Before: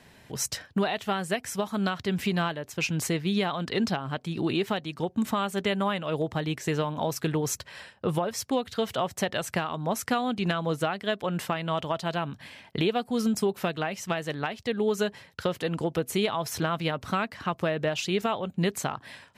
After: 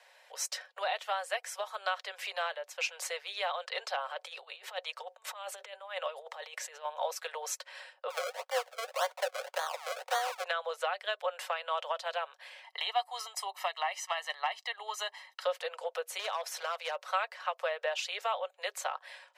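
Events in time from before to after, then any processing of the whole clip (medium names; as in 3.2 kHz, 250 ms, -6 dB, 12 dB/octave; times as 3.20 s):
3.97–6.85 s: compressor with a negative ratio -32 dBFS, ratio -0.5
8.10–10.44 s: decimation with a swept rate 33× 1.8 Hz
12.63–15.43 s: comb 1 ms, depth 84%
16.19–16.96 s: hard clipper -23.5 dBFS
whole clip: steep high-pass 480 Hz 96 dB/octave; treble shelf 11 kHz -10 dB; comb 5.4 ms, depth 35%; trim -3.5 dB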